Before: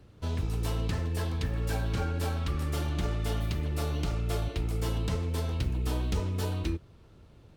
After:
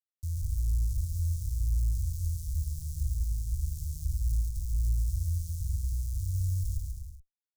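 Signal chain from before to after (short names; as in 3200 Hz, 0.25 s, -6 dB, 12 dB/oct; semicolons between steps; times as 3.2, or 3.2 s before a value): Schmitt trigger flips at -30.5 dBFS; inverse Chebyshev band-stop 370–1800 Hz, stop band 70 dB; on a send: bouncing-ball echo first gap 0.14 s, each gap 0.75×, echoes 5; on the sum: gain +1 dB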